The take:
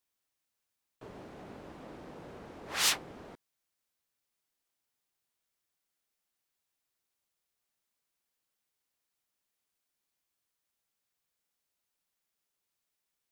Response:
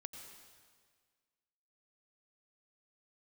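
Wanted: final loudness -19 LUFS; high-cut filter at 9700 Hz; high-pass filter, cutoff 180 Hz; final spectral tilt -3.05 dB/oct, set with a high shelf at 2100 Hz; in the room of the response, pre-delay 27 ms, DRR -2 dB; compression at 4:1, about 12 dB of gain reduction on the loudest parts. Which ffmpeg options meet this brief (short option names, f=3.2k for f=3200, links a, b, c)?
-filter_complex "[0:a]highpass=180,lowpass=9.7k,highshelf=f=2.1k:g=-6.5,acompressor=threshold=-43dB:ratio=4,asplit=2[a][b];[1:a]atrim=start_sample=2205,adelay=27[c];[b][c]afir=irnorm=-1:irlink=0,volume=6dB[d];[a][d]amix=inputs=2:normalize=0,volume=26dB"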